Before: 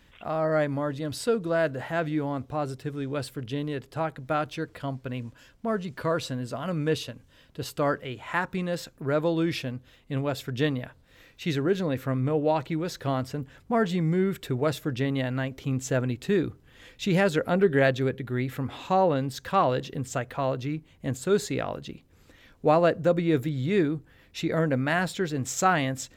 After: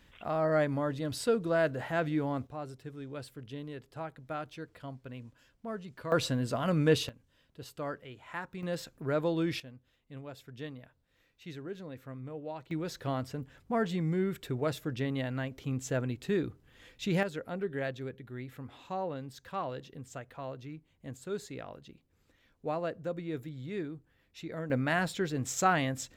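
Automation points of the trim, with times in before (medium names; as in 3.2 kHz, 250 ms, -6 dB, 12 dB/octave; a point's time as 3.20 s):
-3 dB
from 2.47 s -11 dB
from 6.12 s +1 dB
from 7.09 s -12 dB
from 8.63 s -5 dB
from 9.60 s -16.5 dB
from 12.71 s -6 dB
from 17.23 s -13.5 dB
from 24.70 s -4 dB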